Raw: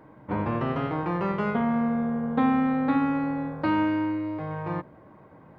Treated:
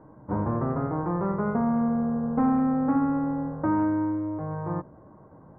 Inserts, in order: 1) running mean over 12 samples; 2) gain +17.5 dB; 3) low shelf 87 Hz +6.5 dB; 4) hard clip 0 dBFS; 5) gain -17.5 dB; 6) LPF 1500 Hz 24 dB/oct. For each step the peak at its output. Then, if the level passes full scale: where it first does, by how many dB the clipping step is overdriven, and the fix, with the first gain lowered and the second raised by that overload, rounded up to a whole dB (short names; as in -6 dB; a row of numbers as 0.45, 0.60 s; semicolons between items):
-13.5, +4.0, +4.5, 0.0, -17.5, -16.5 dBFS; step 2, 4.5 dB; step 2 +12.5 dB, step 5 -12.5 dB